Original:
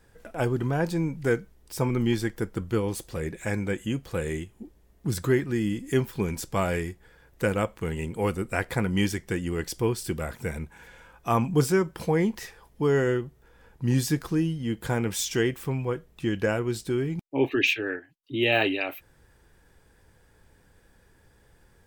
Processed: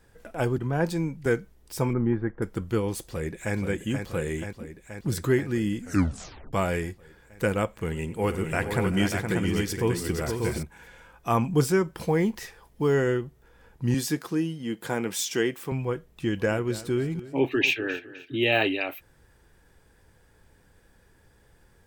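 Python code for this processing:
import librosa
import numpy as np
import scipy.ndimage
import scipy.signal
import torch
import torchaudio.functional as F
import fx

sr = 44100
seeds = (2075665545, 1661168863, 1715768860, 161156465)

y = fx.band_widen(x, sr, depth_pct=70, at=(0.58, 1.26))
y = fx.lowpass(y, sr, hz=1600.0, slope=24, at=(1.93, 2.42))
y = fx.echo_throw(y, sr, start_s=3.05, length_s=0.51, ms=480, feedback_pct=75, wet_db=-6.0)
y = fx.echo_multitap(y, sr, ms=(94, 383, 469, 589), db=(-18.0, -16.5, -7.0, -5.0), at=(7.75, 10.63))
y = fx.quant_companded(y, sr, bits=8, at=(12.0, 12.95))
y = fx.highpass(y, sr, hz=200.0, slope=12, at=(13.94, 15.72))
y = fx.echo_feedback(y, sr, ms=258, feedback_pct=36, wet_db=-16.5, at=(16.28, 18.36), fade=0.02)
y = fx.edit(y, sr, fx.tape_stop(start_s=5.79, length_s=0.74), tone=tone)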